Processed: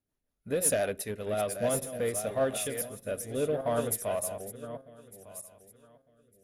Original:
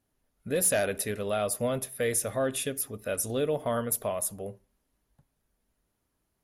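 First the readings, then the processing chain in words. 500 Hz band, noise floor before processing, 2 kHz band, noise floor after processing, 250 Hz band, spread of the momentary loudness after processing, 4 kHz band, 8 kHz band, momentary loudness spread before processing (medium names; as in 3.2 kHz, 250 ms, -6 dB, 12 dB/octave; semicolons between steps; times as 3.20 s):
-0.5 dB, -78 dBFS, -4.0 dB, -83 dBFS, -2.0 dB, 17 LU, -3.5 dB, -3.0 dB, 8 LU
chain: backward echo that repeats 602 ms, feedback 48%, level -7.5 dB; dynamic bell 700 Hz, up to +5 dB, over -42 dBFS, Q 2.1; rotary cabinet horn 5.5 Hz, later 0.7 Hz, at 1.15 s; in parallel at -5 dB: saturation -31.5 dBFS, distortion -8 dB; on the sum: upward expansion 1.5:1, over -40 dBFS; trim -1.5 dB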